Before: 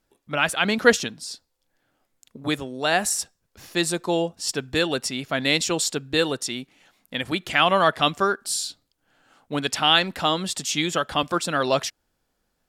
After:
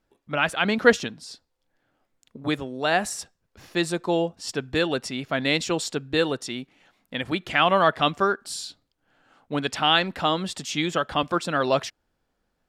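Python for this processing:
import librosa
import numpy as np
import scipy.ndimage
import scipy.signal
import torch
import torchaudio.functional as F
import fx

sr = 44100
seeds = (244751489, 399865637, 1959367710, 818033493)

y = fx.high_shelf(x, sr, hz=5300.0, db=-12.0)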